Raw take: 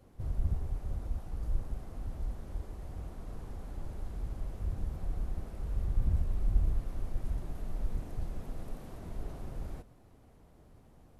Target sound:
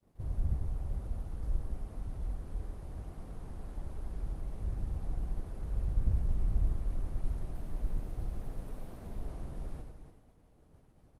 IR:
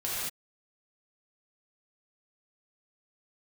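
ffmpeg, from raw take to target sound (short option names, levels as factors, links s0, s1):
-filter_complex "[0:a]asplit=2[s0][s1];[s1]aecho=0:1:295|590|885:0.0841|0.0412|0.0202[s2];[s0][s2]amix=inputs=2:normalize=0,acontrast=27,asplit=2[s3][s4];[s4]aecho=0:1:96.21|288.6:0.501|0.316[s5];[s3][s5]amix=inputs=2:normalize=0,agate=range=0.0224:threshold=0.00447:ratio=3:detection=peak,volume=0.473" -ar 48000 -c:a libopus -b:a 32k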